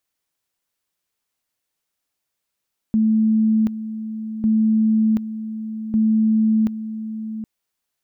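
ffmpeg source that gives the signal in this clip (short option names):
-f lavfi -i "aevalsrc='pow(10,(-13.5-12*gte(mod(t,1.5),0.73))/20)*sin(2*PI*219*t)':d=4.5:s=44100"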